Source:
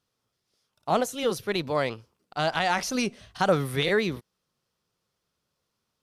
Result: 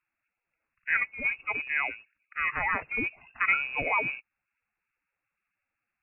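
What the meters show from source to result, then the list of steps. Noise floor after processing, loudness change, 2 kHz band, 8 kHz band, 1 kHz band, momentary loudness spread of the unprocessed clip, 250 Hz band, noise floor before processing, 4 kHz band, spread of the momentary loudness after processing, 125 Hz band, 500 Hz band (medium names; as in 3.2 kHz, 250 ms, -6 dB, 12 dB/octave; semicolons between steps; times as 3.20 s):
under -85 dBFS, -1.5 dB, +5.0 dB, under -40 dB, -5.0 dB, 10 LU, -14.0 dB, -81 dBFS, -16.5 dB, 10 LU, -16.0 dB, -15.5 dB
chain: coarse spectral quantiser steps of 30 dB; frequency inversion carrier 2.7 kHz; trim -2.5 dB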